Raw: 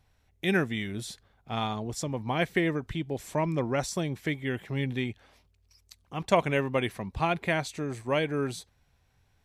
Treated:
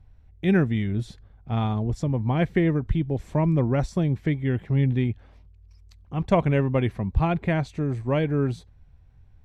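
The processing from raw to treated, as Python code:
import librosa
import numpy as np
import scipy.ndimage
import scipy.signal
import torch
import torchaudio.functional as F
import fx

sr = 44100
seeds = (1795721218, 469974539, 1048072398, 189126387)

y = fx.riaa(x, sr, side='playback')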